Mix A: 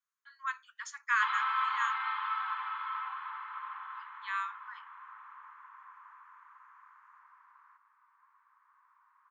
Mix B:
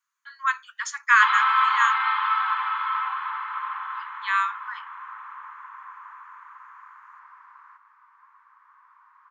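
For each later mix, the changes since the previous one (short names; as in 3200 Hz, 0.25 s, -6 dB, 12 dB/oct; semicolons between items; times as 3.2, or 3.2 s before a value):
speech +12.0 dB; background +11.0 dB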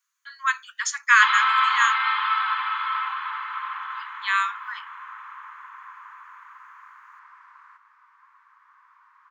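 master: add tilt shelf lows -7.5 dB, about 1300 Hz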